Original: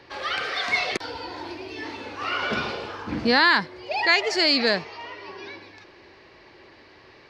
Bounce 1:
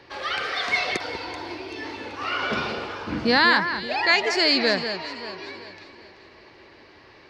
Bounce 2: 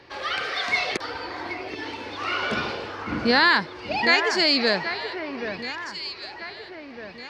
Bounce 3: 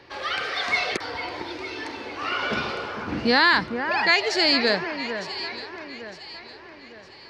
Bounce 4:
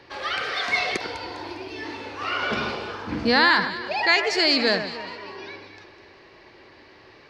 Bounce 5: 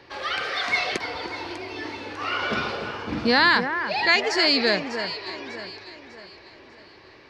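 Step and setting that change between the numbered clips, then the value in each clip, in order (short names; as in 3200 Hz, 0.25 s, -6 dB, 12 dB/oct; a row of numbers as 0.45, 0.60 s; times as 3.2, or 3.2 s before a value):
echo with dull and thin repeats by turns, time: 0.192, 0.778, 0.454, 0.101, 0.299 s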